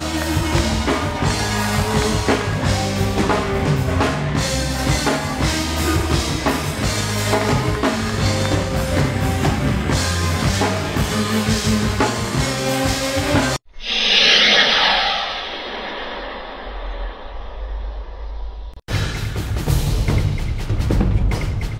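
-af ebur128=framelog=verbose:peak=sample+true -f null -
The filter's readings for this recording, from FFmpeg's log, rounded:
Integrated loudness:
  I:         -18.4 LUFS
  Threshold: -28.9 LUFS
Loudness range:
  LRA:        10.8 LU
  Threshold: -38.8 LUFS
  LRA low:   -25.7 LUFS
  LRA high:  -15.0 LUFS
Sample peak:
  Peak:       -1.2 dBFS
True peak:
  Peak:       -1.1 dBFS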